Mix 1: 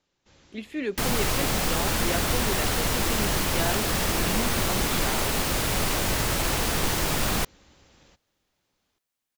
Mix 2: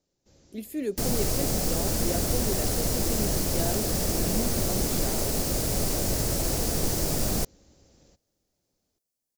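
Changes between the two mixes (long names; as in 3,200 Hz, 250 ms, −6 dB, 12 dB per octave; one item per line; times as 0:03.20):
speech: remove low-pass filter 4,800 Hz 12 dB per octave
master: add flat-topped bell 1,800 Hz −11.5 dB 2.4 octaves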